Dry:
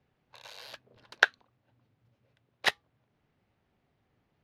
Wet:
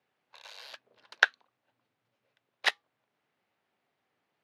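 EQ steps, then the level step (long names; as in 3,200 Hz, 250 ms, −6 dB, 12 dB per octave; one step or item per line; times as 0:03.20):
meter weighting curve A
−1.0 dB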